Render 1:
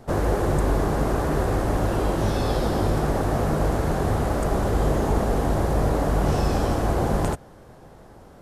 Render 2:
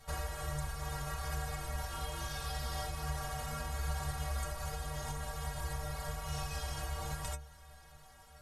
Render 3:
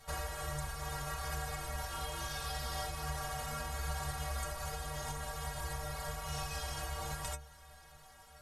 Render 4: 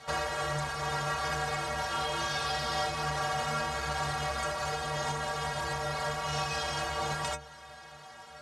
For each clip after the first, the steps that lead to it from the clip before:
guitar amp tone stack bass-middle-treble 10-0-10; downward compressor 4 to 1, threshold −36 dBFS, peak gain reduction 9.5 dB; stiff-string resonator 69 Hz, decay 0.55 s, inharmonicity 0.03; level +12.5 dB
low-shelf EQ 290 Hz −4.5 dB; level +1.5 dB
in parallel at −9.5 dB: wave folding −36 dBFS; on the sum: band-pass filter 150–5,500 Hz; level +8 dB

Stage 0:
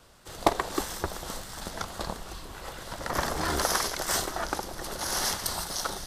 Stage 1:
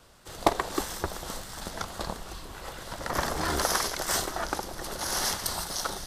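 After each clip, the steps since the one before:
no processing that can be heard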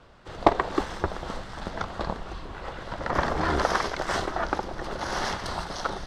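Bessel low-pass filter 2,400 Hz, order 2
level +4.5 dB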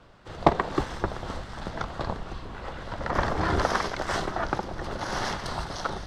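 sub-octave generator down 1 octave, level −1 dB
level −1 dB

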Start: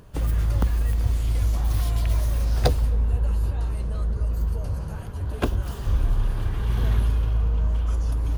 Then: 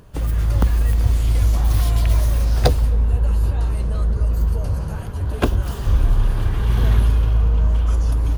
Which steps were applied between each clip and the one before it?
automatic gain control gain up to 4 dB
level +2 dB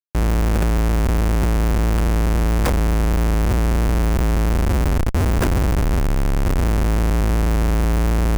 comparator with hysteresis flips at −25 dBFS
parametric band 3,700 Hz −5.5 dB 0.89 octaves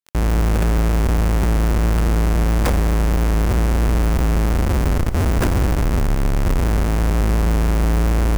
convolution reverb RT60 1.4 s, pre-delay 37 ms, DRR 10 dB
surface crackle 17 per second −26 dBFS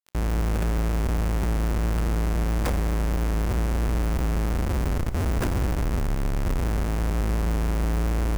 tuned comb filter 62 Hz, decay 1.1 s, harmonics all, mix 30%
level −4.5 dB

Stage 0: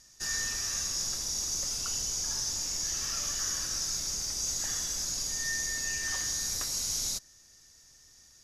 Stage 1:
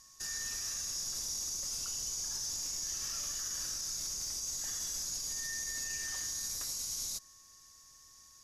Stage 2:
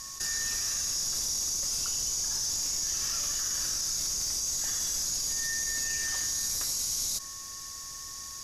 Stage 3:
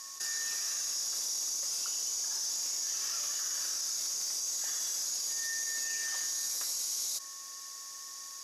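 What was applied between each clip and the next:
high-shelf EQ 6,600 Hz +8.5 dB; brickwall limiter −24.5 dBFS, peak gain reduction 9 dB; steady tone 1,100 Hz −64 dBFS; level −4.5 dB
envelope flattener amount 50%; level +6.5 dB
high-pass filter 420 Hz 12 dB per octave; level −3.5 dB

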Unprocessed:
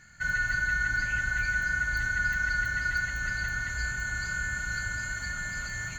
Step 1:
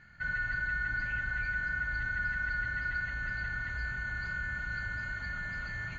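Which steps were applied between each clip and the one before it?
Bessel low-pass filter 2,900 Hz, order 6
in parallel at +2 dB: brickwall limiter −29.5 dBFS, peak gain reduction 10.5 dB
on the sum: level −8 dB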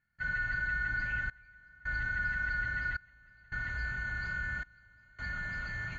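gate pattern ".xxxxxx.." 81 BPM −24 dB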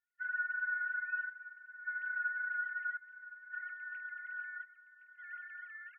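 three sine waves on the formant tracks
single-tap delay 1,066 ms −15 dB
level −5 dB

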